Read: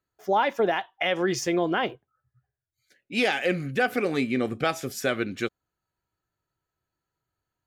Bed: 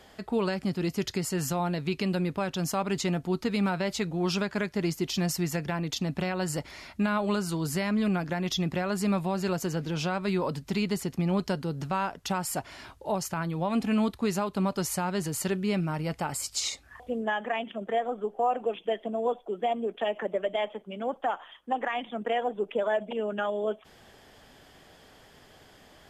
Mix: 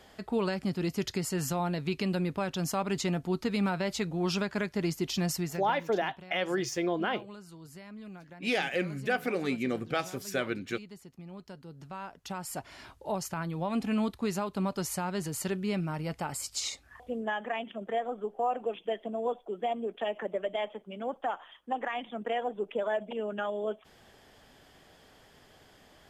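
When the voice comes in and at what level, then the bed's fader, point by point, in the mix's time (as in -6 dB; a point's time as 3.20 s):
5.30 s, -5.5 dB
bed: 5.36 s -2 dB
5.95 s -19 dB
11.35 s -19 dB
12.80 s -3.5 dB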